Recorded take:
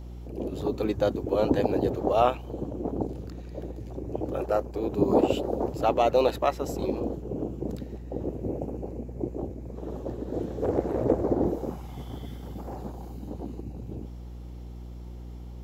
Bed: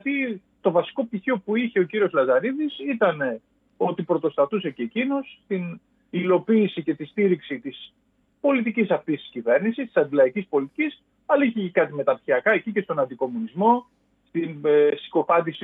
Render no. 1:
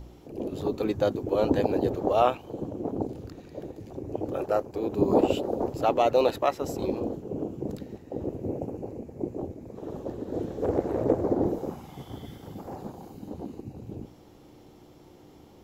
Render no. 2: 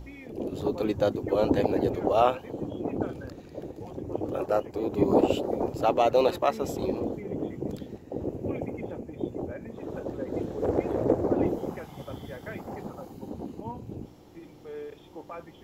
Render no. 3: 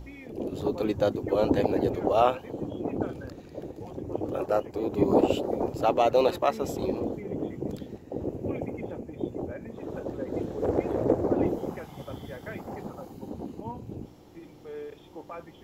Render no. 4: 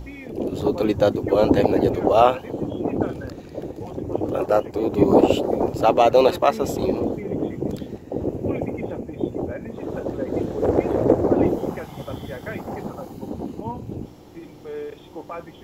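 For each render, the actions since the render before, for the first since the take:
hum removal 60 Hz, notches 4
mix in bed −22 dB
no processing that can be heard
level +7 dB; brickwall limiter −2 dBFS, peak gain reduction 1 dB

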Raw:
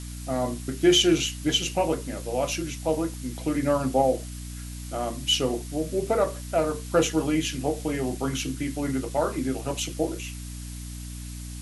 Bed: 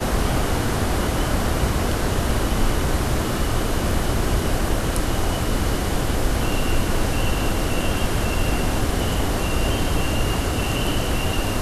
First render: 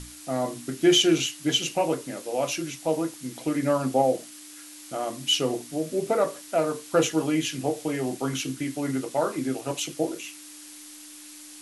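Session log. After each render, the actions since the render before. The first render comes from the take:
mains-hum notches 60/120/180/240 Hz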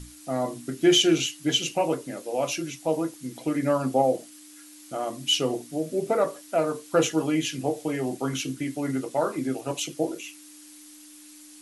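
broadband denoise 6 dB, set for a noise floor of −45 dBFS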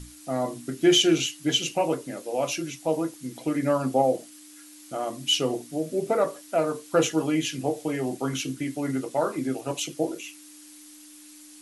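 no processing that can be heard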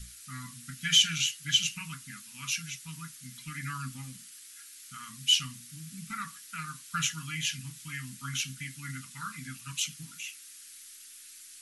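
inverse Chebyshev band-stop filter 340–770 Hz, stop band 50 dB
parametric band 110 Hz −5 dB 2 octaves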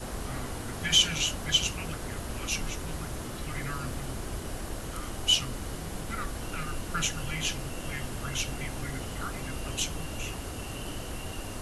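mix in bed −15.5 dB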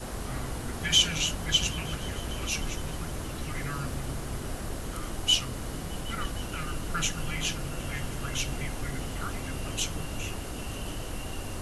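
echo whose low-pass opens from repeat to repeat 154 ms, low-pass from 200 Hz, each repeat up 1 octave, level −6 dB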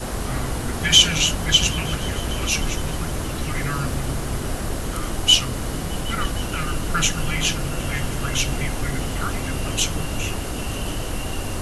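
level +9 dB
brickwall limiter −1 dBFS, peak gain reduction 1 dB

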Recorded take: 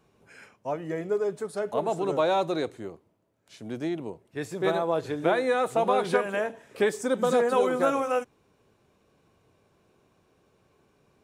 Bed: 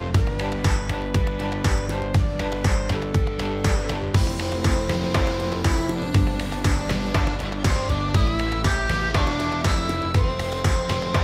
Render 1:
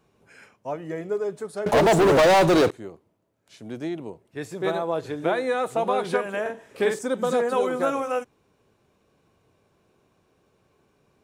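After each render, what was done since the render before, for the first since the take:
0:01.66–0:02.71: leveller curve on the samples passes 5
0:06.41–0:06.99: double-tracking delay 46 ms −3.5 dB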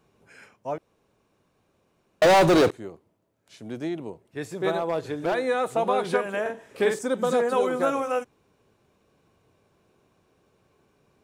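0:00.78–0:02.22: fill with room tone
0:04.78–0:05.35: gain into a clipping stage and back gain 20 dB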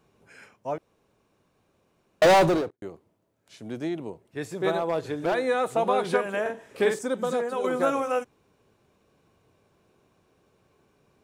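0:02.30–0:02.82: fade out and dull
0:06.81–0:07.64: fade out linear, to −7.5 dB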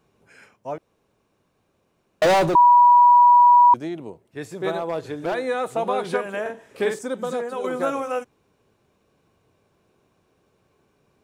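0:02.55–0:03.74: beep over 971 Hz −9 dBFS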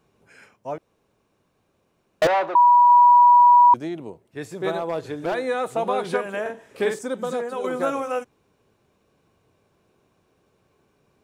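0:02.27–0:02.90: band-pass filter 670–2,100 Hz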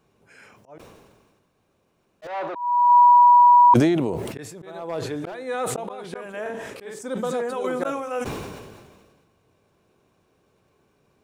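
volume swells 424 ms
level that may fall only so fast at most 35 dB per second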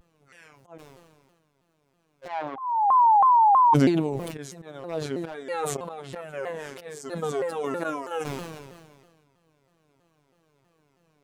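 phases set to zero 154 Hz
pitch modulation by a square or saw wave saw down 3.1 Hz, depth 250 cents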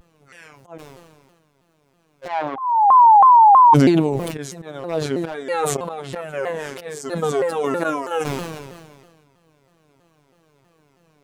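level +7.5 dB
brickwall limiter −1 dBFS, peak gain reduction 3 dB

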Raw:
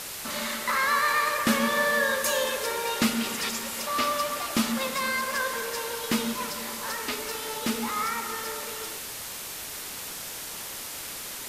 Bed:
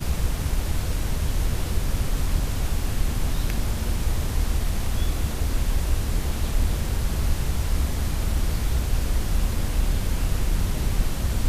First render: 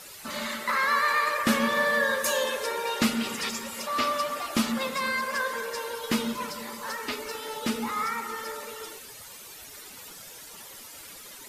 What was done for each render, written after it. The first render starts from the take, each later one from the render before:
broadband denoise 12 dB, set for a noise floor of −38 dBFS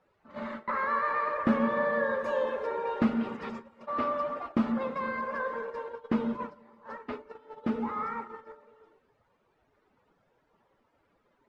noise gate −33 dBFS, range −16 dB
low-pass filter 1,100 Hz 12 dB per octave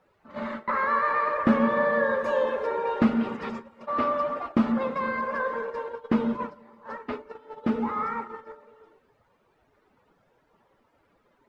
level +4.5 dB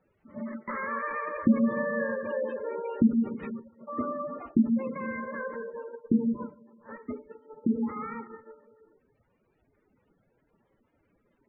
drawn EQ curve 270 Hz 0 dB, 970 Hz −11 dB, 2,300 Hz −3 dB
gate on every frequency bin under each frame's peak −20 dB strong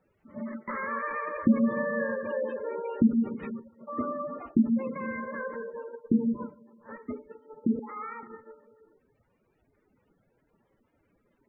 0:07.79–0:08.23: high-pass filter 530 Hz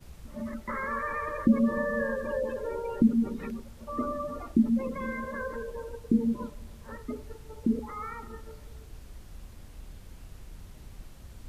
mix in bed −23 dB

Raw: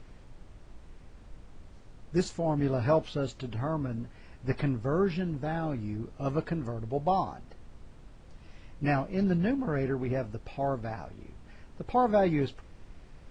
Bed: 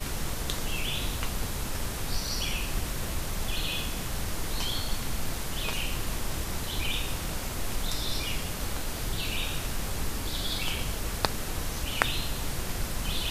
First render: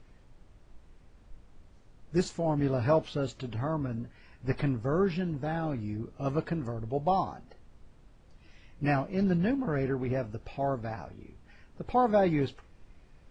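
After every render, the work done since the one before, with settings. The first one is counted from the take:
noise reduction from a noise print 6 dB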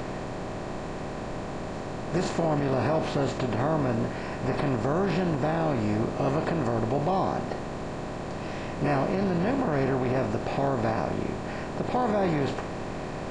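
compressor on every frequency bin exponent 0.4
brickwall limiter −17 dBFS, peak gain reduction 7 dB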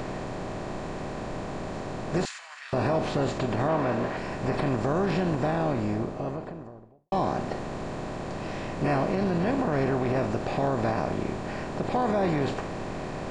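0:02.25–0:02.73: high-pass filter 1,500 Hz 24 dB per octave
0:03.68–0:04.17: mid-hump overdrive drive 12 dB, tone 2,200 Hz, clips at −16.5 dBFS
0:05.44–0:07.12: fade out and dull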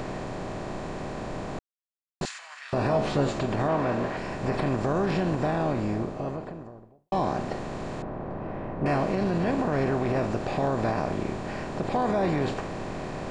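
0:01.59–0:02.21: silence
0:02.89–0:03.41: double-tracking delay 14 ms −5.5 dB
0:08.02–0:08.86: low-pass filter 1,300 Hz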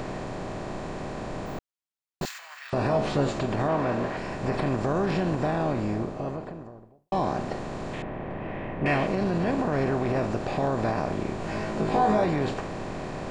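0:01.46–0:02.70: bad sample-rate conversion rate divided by 2×, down filtered, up hold
0:07.93–0:09.07: flat-topped bell 2,500 Hz +9 dB 1.2 octaves
0:11.38–0:12.25: flutter between parallel walls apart 3.2 metres, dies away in 0.33 s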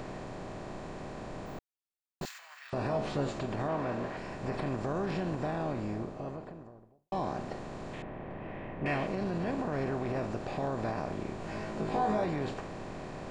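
level −7.5 dB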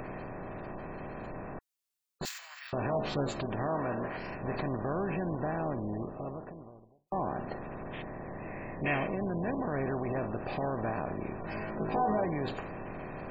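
gate on every frequency bin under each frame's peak −25 dB strong
high-shelf EQ 2,400 Hz +8.5 dB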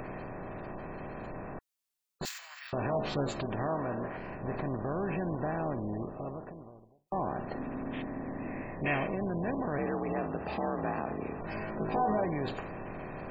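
0:03.74–0:05.03: high-frequency loss of the air 380 metres
0:07.55–0:08.62: parametric band 260 Hz +15 dB 0.3 octaves
0:09.78–0:11.41: frequency shifter +54 Hz

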